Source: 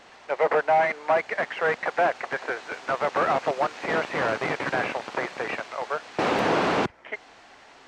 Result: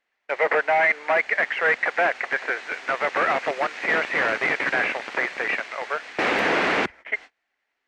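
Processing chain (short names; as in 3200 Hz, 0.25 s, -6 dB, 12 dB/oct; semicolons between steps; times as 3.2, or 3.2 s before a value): gate -43 dBFS, range -31 dB; ten-band EQ 125 Hz -9 dB, 1000 Hz -3 dB, 2000 Hz +10 dB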